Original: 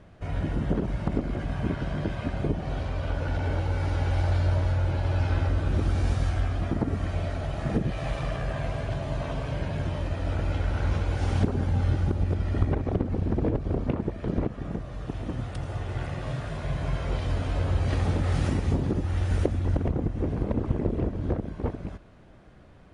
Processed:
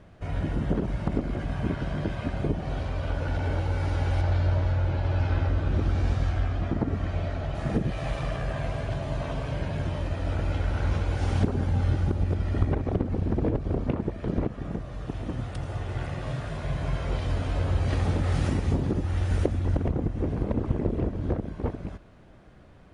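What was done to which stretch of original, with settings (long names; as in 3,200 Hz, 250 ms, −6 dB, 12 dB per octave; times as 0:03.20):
0:04.21–0:07.55: high-frequency loss of the air 75 metres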